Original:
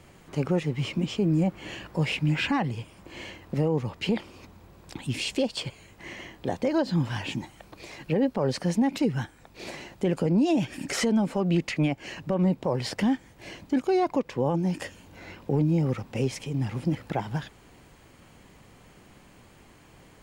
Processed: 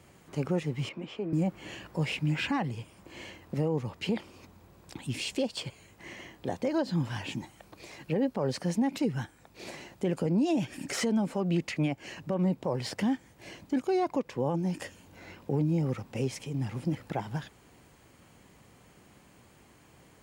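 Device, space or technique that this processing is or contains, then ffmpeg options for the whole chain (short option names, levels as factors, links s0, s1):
exciter from parts: -filter_complex "[0:a]asplit=2[s0][s1];[s1]highpass=4800,asoftclip=type=tanh:threshold=0.0126,volume=0.422[s2];[s0][s2]amix=inputs=2:normalize=0,highpass=55,asettb=1/sr,asplit=3[s3][s4][s5];[s3]atrim=end=0.894[s6];[s4]atrim=start=0.89:end=1.33,asetpts=PTS-STARTPTS,afade=t=in:d=0.004:c=qsin,afade=t=out:st=0.436:d=0.004:c=qsin,acrossover=split=330 3100:gain=0.224 1 0.141[s7][s8][s9];[s7][s8][s9]amix=inputs=3:normalize=0[s10];[s5]atrim=start=1.326[s11];[s6][s10]acrossfade=d=0.004:c1=hsin:c2=qsin[s12];[s12][s11]acrossfade=d=0.004:c1=qsin:c2=hsin,volume=0.631"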